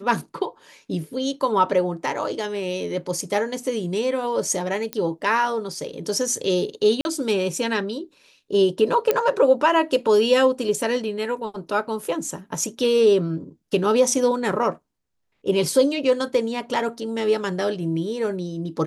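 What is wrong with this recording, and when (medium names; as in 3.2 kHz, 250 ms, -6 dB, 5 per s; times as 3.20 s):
4.93 s: pop -11 dBFS
7.01–7.05 s: dropout 41 ms
9.11 s: pop -6 dBFS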